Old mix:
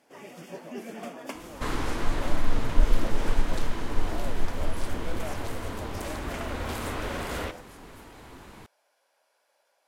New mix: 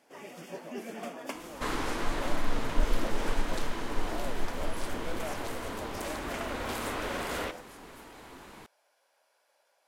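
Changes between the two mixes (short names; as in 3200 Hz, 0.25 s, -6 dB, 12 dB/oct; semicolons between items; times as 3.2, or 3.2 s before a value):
second sound: add bell 89 Hz -4.5 dB 1.3 oct; master: add low shelf 160 Hz -6.5 dB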